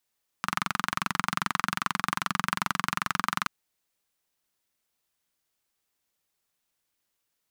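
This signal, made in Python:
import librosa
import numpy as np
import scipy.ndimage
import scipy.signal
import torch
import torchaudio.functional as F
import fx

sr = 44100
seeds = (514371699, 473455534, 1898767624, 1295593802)

y = fx.engine_single(sr, seeds[0], length_s=3.03, rpm=2700, resonances_hz=(190.0, 1200.0))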